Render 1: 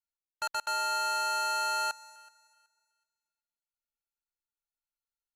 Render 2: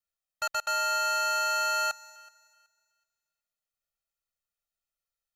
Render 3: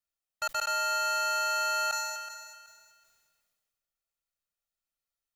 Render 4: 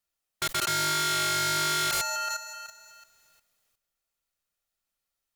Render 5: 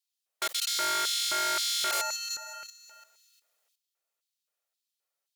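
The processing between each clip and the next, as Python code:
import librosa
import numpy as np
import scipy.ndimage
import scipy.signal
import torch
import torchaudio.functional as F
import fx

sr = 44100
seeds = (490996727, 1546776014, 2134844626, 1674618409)

y1 = x + 0.96 * np.pad(x, (int(1.6 * sr / 1000.0), 0))[:len(x)]
y2 = fx.sustainer(y1, sr, db_per_s=32.0)
y2 = F.gain(torch.from_numpy(y2), -1.5).numpy()
y3 = fx.level_steps(y2, sr, step_db=11)
y3 = fx.fold_sine(y3, sr, drive_db=13, ceiling_db=-21.0)
y3 = F.gain(torch.from_numpy(y3), -3.0).numpy()
y4 = fx.filter_lfo_highpass(y3, sr, shape='square', hz=1.9, low_hz=510.0, high_hz=3700.0, q=1.6)
y4 = F.gain(torch.from_numpy(y4), -2.0).numpy()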